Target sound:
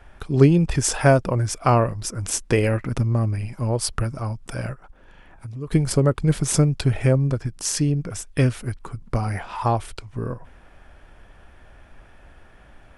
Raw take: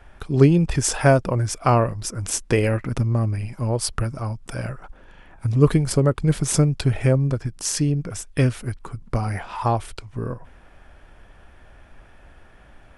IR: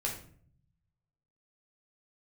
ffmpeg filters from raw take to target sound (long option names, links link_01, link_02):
-filter_complex "[0:a]asplit=3[link_01][link_02][link_03];[link_01]afade=type=out:start_time=4.73:duration=0.02[link_04];[link_02]acompressor=threshold=-44dB:ratio=2,afade=type=in:start_time=4.73:duration=0.02,afade=type=out:start_time=5.71:duration=0.02[link_05];[link_03]afade=type=in:start_time=5.71:duration=0.02[link_06];[link_04][link_05][link_06]amix=inputs=3:normalize=0"